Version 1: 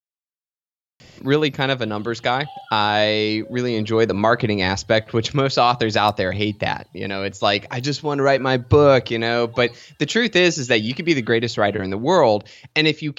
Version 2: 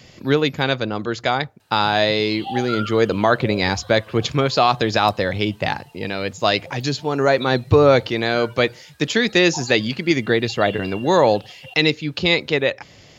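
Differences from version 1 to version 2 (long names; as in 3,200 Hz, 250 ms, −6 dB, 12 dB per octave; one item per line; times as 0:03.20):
speech: entry −1.00 s
background +9.5 dB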